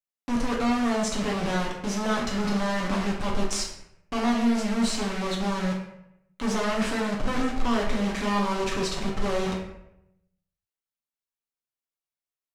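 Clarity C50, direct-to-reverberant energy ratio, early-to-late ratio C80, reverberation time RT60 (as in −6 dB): 4.0 dB, −3.5 dB, 7.5 dB, 0.80 s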